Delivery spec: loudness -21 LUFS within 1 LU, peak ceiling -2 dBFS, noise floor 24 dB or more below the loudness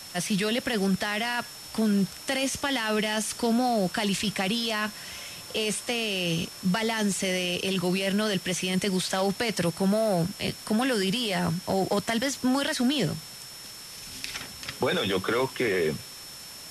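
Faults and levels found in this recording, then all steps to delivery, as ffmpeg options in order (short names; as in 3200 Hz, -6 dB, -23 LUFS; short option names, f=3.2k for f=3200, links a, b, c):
steady tone 5400 Hz; tone level -44 dBFS; noise floor -43 dBFS; noise floor target -51 dBFS; loudness -27.0 LUFS; peak -14.0 dBFS; loudness target -21.0 LUFS
-> -af "bandreject=f=5.4k:w=30"
-af "afftdn=nr=8:nf=-43"
-af "volume=6dB"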